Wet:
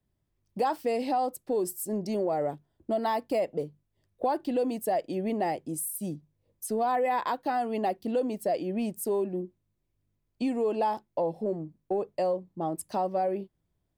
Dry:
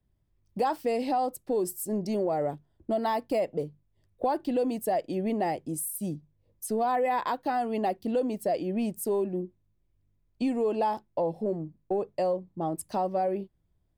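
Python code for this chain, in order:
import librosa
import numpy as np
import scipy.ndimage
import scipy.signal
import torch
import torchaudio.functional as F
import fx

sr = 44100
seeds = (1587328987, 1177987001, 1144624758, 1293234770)

y = fx.low_shelf(x, sr, hz=91.0, db=-9.5)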